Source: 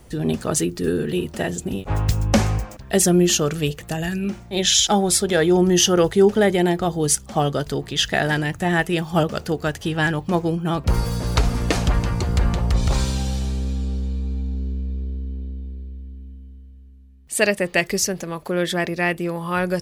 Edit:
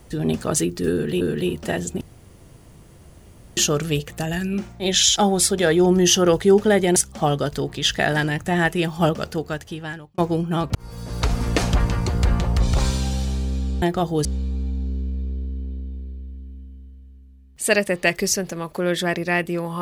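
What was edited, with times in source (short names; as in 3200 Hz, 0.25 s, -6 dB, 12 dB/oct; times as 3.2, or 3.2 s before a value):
0.92–1.21 loop, 2 plays
1.72–3.28 room tone
6.67–7.1 move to 13.96
9.26–10.32 fade out
10.89–11.62 fade in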